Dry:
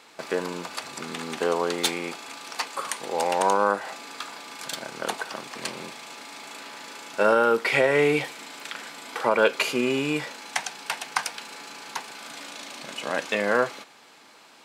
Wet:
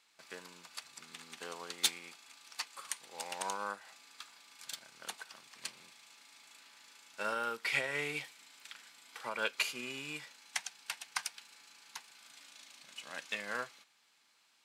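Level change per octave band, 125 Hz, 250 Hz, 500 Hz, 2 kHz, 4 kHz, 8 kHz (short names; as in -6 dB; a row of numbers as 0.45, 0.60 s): -18.0, -21.5, -22.0, -11.5, -8.5, -7.5 dB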